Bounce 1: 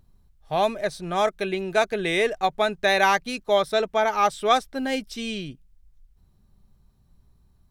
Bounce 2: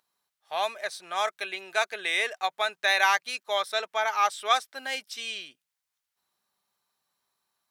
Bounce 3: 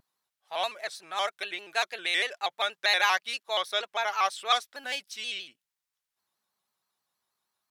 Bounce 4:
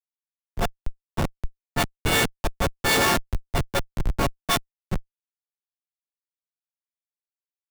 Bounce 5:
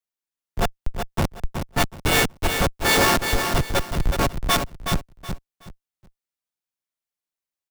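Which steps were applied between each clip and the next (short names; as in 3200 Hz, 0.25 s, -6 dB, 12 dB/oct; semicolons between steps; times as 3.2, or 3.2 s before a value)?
HPF 1000 Hz 12 dB/oct
dynamic EQ 3600 Hz, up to +5 dB, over -39 dBFS, Q 1.3; shaped vibrato square 6.3 Hz, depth 100 cents; gain -3 dB
frequency quantiser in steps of 4 st; Schmitt trigger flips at -17.5 dBFS; three-band expander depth 100%; gain +6 dB
in parallel at -8 dB: wrapped overs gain 14 dB; on the sum: feedback echo 0.372 s, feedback 25%, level -6.5 dB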